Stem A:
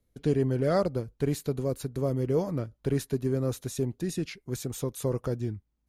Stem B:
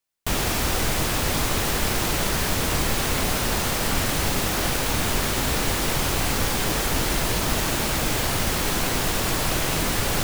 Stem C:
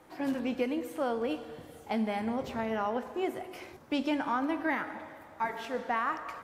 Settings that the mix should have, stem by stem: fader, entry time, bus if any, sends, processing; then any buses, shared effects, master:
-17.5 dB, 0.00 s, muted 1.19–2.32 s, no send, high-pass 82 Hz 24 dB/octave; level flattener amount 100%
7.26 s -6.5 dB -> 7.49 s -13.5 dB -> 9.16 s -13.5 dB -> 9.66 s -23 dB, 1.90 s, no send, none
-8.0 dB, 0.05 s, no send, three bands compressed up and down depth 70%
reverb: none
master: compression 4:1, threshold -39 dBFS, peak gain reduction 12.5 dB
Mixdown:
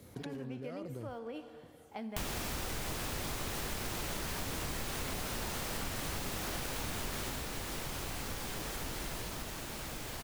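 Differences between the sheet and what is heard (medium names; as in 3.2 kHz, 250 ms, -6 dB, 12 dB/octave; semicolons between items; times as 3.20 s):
stem B -6.5 dB -> +2.5 dB; stem C: missing three bands compressed up and down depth 70%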